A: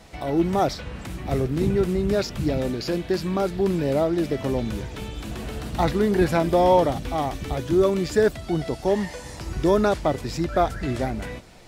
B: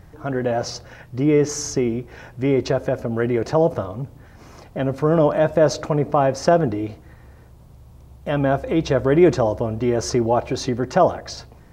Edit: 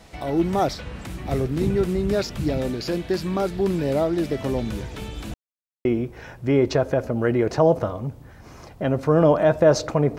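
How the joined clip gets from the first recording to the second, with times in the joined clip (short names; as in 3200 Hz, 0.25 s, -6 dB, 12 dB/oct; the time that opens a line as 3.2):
A
5.34–5.85 mute
5.85 switch to B from 1.8 s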